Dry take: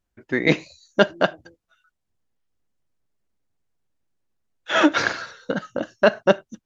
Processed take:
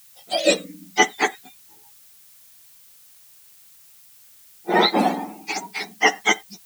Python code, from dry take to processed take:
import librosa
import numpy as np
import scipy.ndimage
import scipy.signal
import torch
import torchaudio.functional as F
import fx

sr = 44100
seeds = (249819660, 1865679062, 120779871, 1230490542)

y = fx.octave_mirror(x, sr, pivot_hz=1100.0)
y = fx.dmg_noise_colour(y, sr, seeds[0], colour='blue', level_db=-54.0)
y = F.gain(torch.from_numpy(y), 3.5).numpy()